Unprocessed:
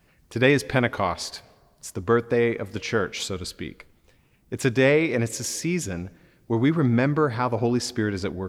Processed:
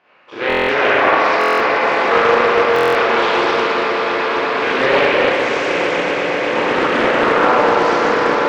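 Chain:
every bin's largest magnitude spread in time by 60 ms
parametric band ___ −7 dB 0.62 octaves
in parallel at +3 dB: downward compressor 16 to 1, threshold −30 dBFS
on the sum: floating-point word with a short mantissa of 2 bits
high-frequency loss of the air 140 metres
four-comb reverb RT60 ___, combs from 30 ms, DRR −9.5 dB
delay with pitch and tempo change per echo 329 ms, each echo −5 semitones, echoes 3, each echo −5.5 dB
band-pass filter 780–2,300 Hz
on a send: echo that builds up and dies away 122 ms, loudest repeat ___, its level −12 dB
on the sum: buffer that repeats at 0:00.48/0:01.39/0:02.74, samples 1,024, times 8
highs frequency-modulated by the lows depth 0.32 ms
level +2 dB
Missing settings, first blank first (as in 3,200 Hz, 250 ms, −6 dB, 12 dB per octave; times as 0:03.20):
1,800 Hz, 3.2 s, 8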